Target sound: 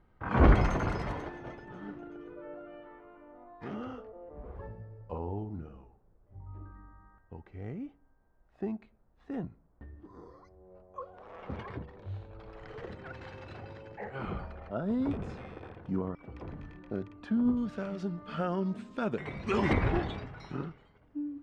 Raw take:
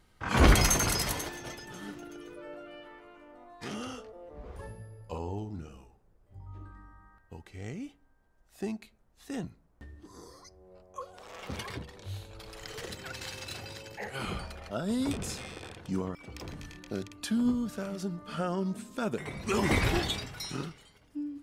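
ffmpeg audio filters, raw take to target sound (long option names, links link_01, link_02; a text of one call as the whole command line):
ffmpeg -i in.wav -af "asetnsamples=nb_out_samples=441:pad=0,asendcmd='17.57 lowpass f 3000;19.73 lowpass f 1500',lowpass=1400" out.wav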